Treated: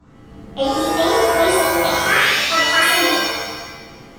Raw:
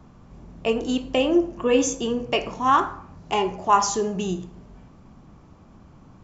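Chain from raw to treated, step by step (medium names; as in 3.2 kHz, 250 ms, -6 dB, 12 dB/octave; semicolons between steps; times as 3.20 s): gliding tape speed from 109% -> 189%; pitch-shifted reverb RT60 1.1 s, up +7 st, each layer -2 dB, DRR -10.5 dB; trim -7 dB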